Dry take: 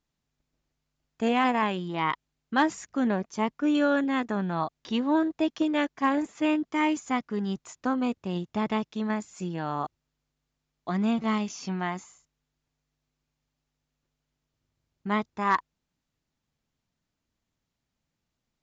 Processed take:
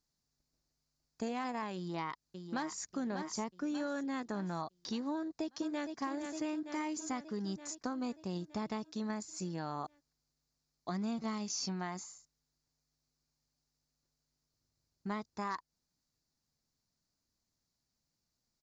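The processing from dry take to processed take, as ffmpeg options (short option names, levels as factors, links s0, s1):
-filter_complex "[0:a]asplit=2[s0][s1];[s1]afade=t=in:st=1.75:d=0.01,afade=t=out:st=2.91:d=0.01,aecho=0:1:590|1180|1770|2360|2950:0.398107|0.179148|0.0806167|0.0362775|0.0163249[s2];[s0][s2]amix=inputs=2:normalize=0,asplit=2[s3][s4];[s4]afade=t=in:st=5.16:d=0.01,afade=t=out:st=5.98:d=0.01,aecho=0:1:460|920|1380|1840|2300|2760|3220|3680|4140:0.354813|0.230629|0.149909|0.0974406|0.0633364|0.0411687|0.0267596|0.0173938|0.0113059[s5];[s3][s5]amix=inputs=2:normalize=0,acompressor=threshold=0.0355:ratio=6,highshelf=f=3800:t=q:w=3:g=6,volume=0.531"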